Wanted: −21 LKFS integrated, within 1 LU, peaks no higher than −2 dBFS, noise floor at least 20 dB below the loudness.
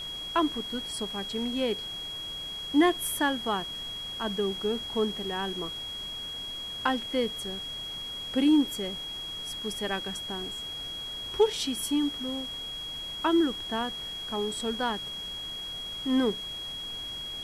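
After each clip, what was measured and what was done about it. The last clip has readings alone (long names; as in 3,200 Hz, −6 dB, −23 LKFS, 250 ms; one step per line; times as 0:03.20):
interfering tone 3,300 Hz; level of the tone −35 dBFS; background noise floor −38 dBFS; target noise floor −50 dBFS; integrated loudness −30.0 LKFS; sample peak −12.5 dBFS; target loudness −21.0 LKFS
→ notch filter 3,300 Hz, Q 30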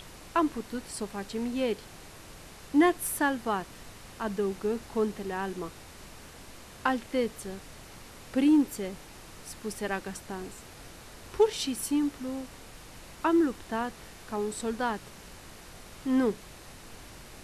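interfering tone none found; background noise floor −49 dBFS; target noise floor −51 dBFS
→ noise reduction from a noise print 6 dB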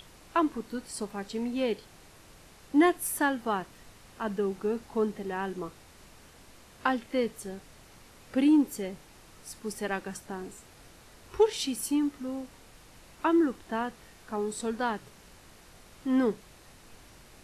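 background noise floor −55 dBFS; integrated loudness −30.5 LKFS; sample peak −13.0 dBFS; target loudness −21.0 LKFS
→ level +9.5 dB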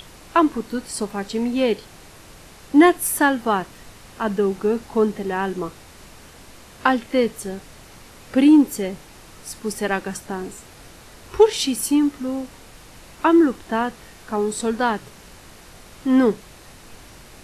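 integrated loudness −21.0 LKFS; sample peak −3.5 dBFS; background noise floor −45 dBFS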